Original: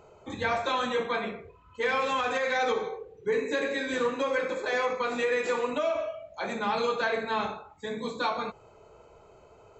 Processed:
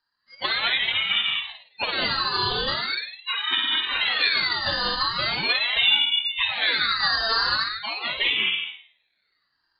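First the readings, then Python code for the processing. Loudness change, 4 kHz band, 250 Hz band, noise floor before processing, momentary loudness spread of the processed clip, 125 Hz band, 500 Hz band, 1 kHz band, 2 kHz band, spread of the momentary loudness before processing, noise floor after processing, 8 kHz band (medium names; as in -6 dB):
+7.5 dB, +19.0 dB, -5.5 dB, -56 dBFS, 9 LU, +5.5 dB, -9.5 dB, +1.0 dB, +8.0 dB, 10 LU, -73 dBFS, no reading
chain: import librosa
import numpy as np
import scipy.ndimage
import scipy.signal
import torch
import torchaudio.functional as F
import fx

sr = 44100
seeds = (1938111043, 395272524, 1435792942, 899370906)

y = fx.cvsd(x, sr, bps=32000)
y = fx.noise_reduce_blind(y, sr, reduce_db=25)
y = fx.tilt_shelf(y, sr, db=-10.0, hz=860.0)
y = fx.small_body(y, sr, hz=(300.0, 640.0, 1200.0, 2200.0), ring_ms=25, db=9)
y = fx.rider(y, sr, range_db=5, speed_s=0.5)
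y = fx.env_lowpass_down(y, sr, base_hz=1000.0, full_db=-21.5)
y = fx.room_flutter(y, sr, wall_m=9.2, rt60_s=0.49)
y = fx.env_lowpass(y, sr, base_hz=1600.0, full_db=-21.0)
y = fx.low_shelf(y, sr, hz=190.0, db=-9.5)
y = fx.rev_gated(y, sr, seeds[0], gate_ms=240, shape='rising', drr_db=-0.5)
y = fx.freq_invert(y, sr, carrier_hz=3800)
y = fx.ring_lfo(y, sr, carrier_hz=920.0, swing_pct=70, hz=0.41)
y = y * librosa.db_to_amplitude(5.0)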